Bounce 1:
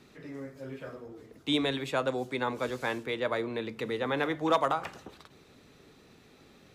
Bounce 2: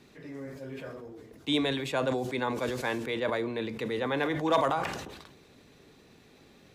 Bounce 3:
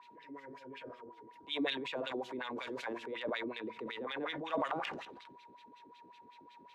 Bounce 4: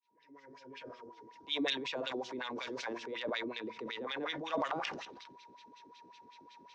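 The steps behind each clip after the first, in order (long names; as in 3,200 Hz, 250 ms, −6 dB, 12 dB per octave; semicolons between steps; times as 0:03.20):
notch filter 1,300 Hz, Q 11; level that may fall only so fast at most 47 dB per second
steady tone 960 Hz −46 dBFS; LFO wah 5.4 Hz 270–3,300 Hz, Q 2.6; transient designer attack −3 dB, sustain +7 dB; level −1.5 dB
fade in at the beginning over 0.92 s; hard clipping −23 dBFS, distortion −33 dB; low-pass with resonance 5,700 Hz, resonance Q 3.9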